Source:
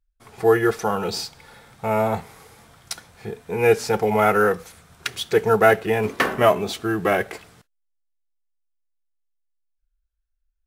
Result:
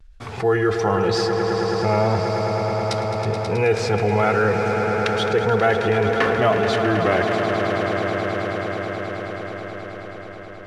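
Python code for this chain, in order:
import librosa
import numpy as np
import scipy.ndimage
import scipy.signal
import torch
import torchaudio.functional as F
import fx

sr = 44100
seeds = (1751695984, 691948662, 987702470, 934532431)

p1 = scipy.signal.sosfilt(scipy.signal.butter(2, 5100.0, 'lowpass', fs=sr, output='sos'), x)
p2 = fx.peak_eq(p1, sr, hz=100.0, db=9.5, octaves=0.37)
p3 = fx.rider(p2, sr, range_db=10, speed_s=0.5)
p4 = p2 + (p3 * 10.0 ** (-1.0 / 20.0))
p5 = fx.vibrato(p4, sr, rate_hz=0.95, depth_cents=47.0)
p6 = p5 + fx.echo_swell(p5, sr, ms=107, loudest=5, wet_db=-12, dry=0)
p7 = fx.env_flatten(p6, sr, amount_pct=50)
y = p7 * 10.0 ** (-9.0 / 20.0)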